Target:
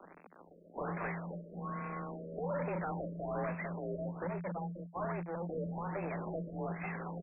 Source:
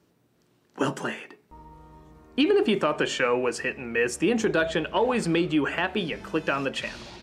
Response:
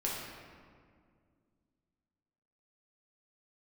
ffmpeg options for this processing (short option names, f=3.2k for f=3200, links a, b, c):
-filter_complex "[0:a]aeval=exprs='if(lt(val(0),0),0.708*val(0),val(0))':c=same,equalizer=f=3.6k:w=3.9:g=5.5,acompressor=threshold=-38dB:ratio=6,asettb=1/sr,asplit=3[a][b][c];[a]atrim=end=2.864[d];[b]atrim=start=2.86:end=3.46,asetpts=PTS-STARTPTS,afade=t=in:d=0.004:c=qsin,afade=t=out:st=0.596:d=0.004:c=qsin,equalizer=f=100:w=0.72:g=9.5[e];[c]atrim=start=3.456[f];[d][e]acrossfade=d=0.004:c1=hsin:c2=qsin[g];[g][f]acrossfade=d=0.004:c1=qsin:c2=hsin,asplit=2[h][i];[i]highpass=f=720:p=1,volume=21dB,asoftclip=type=tanh:threshold=-24.5dB[j];[h][j]amix=inputs=2:normalize=0,lowpass=f=1.4k:p=1,volume=-6dB,asplit=2[k][l];[l]adelay=649,lowpass=f=2.7k:p=1,volume=-23.5dB,asplit=2[m][n];[n]adelay=649,lowpass=f=2.7k:p=1,volume=0.17[o];[k][m][o]amix=inputs=3:normalize=0,asettb=1/sr,asplit=3[p][q][r];[p]atrim=end=4.274[s];[q]atrim=start=4.27:end=5.49,asetpts=PTS-STARTPTS,afade=t=in:d=0.004:c=qsin,afade=t=out:st=1.216:d=0.004:c=qsin,agate=range=-21dB:threshold=-34dB:ratio=16:detection=peak[t];[r]atrim=start=5.486[u];[s][t]acrossfade=d=0.004:c1=hsin:c2=qsin[v];[v][u]acrossfade=d=0.004:c1=qsin:c2=hsin,acrusher=bits=6:dc=4:mix=0:aa=0.000001,aexciter=amount=14.4:drive=3.6:freq=9.6k,afreqshift=170,asoftclip=type=tanh:threshold=-37.5dB,afftfilt=real='re*lt(b*sr/1024,630*pow(2700/630,0.5+0.5*sin(2*PI*1.2*pts/sr)))':imag='im*lt(b*sr/1024,630*pow(2700/630,0.5+0.5*sin(2*PI*1.2*pts/sr)))':win_size=1024:overlap=0.75,volume=7dB"